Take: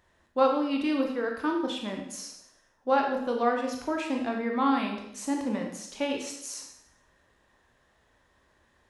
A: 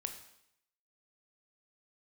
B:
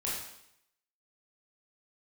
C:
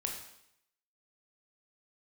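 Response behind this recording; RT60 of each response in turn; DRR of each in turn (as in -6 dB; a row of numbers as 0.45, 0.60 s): C; 0.75, 0.75, 0.75 s; 5.5, -6.5, 1.0 dB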